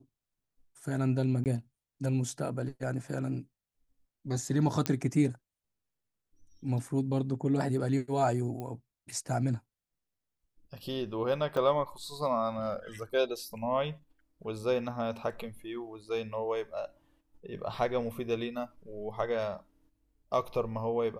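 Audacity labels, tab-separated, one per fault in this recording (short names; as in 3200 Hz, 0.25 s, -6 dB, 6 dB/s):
1.440000	1.460000	gap 18 ms
4.860000	4.860000	pop -13 dBFS
8.600000	8.600000	pop -26 dBFS
11.570000	11.570000	gap 3.4 ms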